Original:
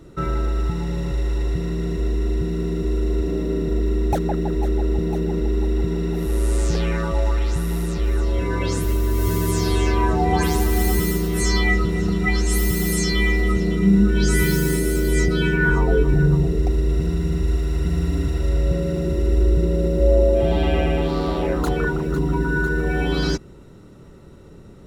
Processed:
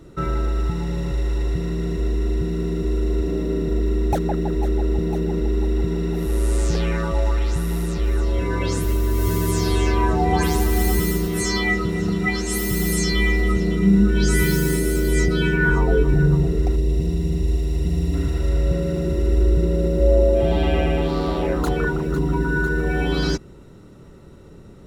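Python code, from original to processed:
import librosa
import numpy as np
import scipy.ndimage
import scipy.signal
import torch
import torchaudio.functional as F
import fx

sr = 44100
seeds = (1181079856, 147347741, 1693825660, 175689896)

y = fx.highpass(x, sr, hz=70.0, slope=24, at=(11.27, 12.72))
y = fx.peak_eq(y, sr, hz=1400.0, db=-13.0, octaves=0.83, at=(16.76, 18.14))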